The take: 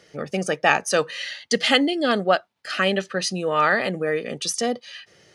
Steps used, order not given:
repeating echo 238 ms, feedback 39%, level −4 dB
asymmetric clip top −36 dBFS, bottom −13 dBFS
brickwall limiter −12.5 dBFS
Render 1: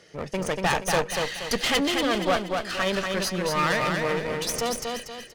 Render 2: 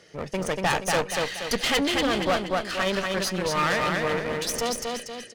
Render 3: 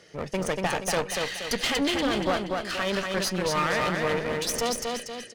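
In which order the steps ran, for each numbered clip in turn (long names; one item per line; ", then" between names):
asymmetric clip, then brickwall limiter, then repeating echo
repeating echo, then asymmetric clip, then brickwall limiter
brickwall limiter, then repeating echo, then asymmetric clip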